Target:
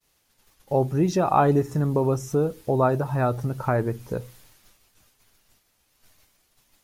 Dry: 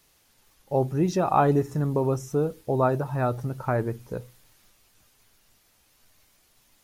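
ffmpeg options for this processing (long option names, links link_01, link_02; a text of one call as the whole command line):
ffmpeg -i in.wav -filter_complex "[0:a]agate=range=-33dB:threshold=-55dB:ratio=3:detection=peak,asplit=2[link_01][link_02];[link_02]acompressor=threshold=-33dB:ratio=6,volume=0dB[link_03];[link_01][link_03]amix=inputs=2:normalize=0" out.wav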